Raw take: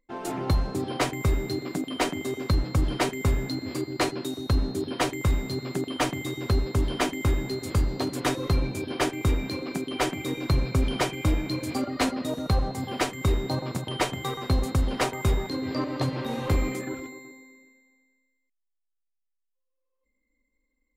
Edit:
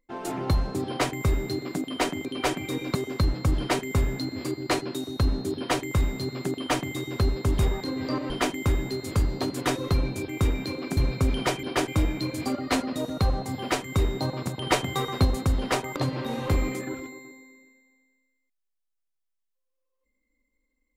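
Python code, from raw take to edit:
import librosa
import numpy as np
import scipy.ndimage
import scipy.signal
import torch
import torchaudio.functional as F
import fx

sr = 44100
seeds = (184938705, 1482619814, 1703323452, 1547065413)

y = fx.edit(x, sr, fx.move(start_s=8.87, length_s=0.25, to_s=11.17),
    fx.move(start_s=9.81, length_s=0.7, to_s=2.25),
    fx.clip_gain(start_s=13.96, length_s=0.58, db=3.0),
    fx.move(start_s=15.25, length_s=0.71, to_s=6.89), tone=tone)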